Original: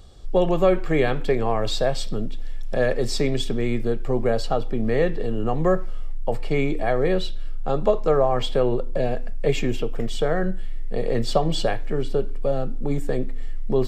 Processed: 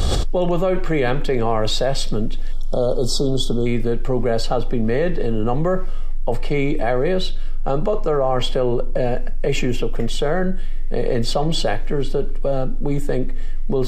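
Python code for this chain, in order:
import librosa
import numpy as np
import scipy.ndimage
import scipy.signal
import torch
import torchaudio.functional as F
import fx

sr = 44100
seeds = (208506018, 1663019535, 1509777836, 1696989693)

y = fx.spec_erase(x, sr, start_s=2.52, length_s=1.14, low_hz=1500.0, high_hz=3000.0)
y = fx.notch(y, sr, hz=3700.0, q=8.3, at=(7.58, 9.82))
y = fx.env_flatten(y, sr, amount_pct=100)
y = y * librosa.db_to_amplitude(-3.0)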